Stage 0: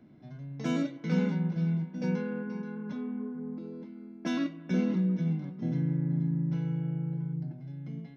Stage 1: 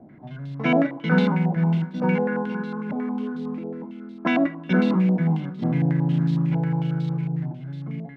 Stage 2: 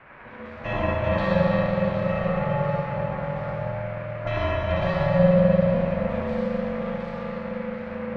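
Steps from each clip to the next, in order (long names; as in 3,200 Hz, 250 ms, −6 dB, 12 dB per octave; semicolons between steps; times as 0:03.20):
noise that follows the level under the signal 27 dB; dynamic equaliser 800 Hz, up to +6 dB, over −50 dBFS, Q 1.6; low-pass on a step sequencer 11 Hz 730–3,800 Hz; level +7.5 dB
noise in a band 620–2,000 Hz −42 dBFS; comb and all-pass reverb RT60 4.9 s, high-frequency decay 0.75×, pre-delay 15 ms, DRR −8.5 dB; ring modulation 360 Hz; level −7 dB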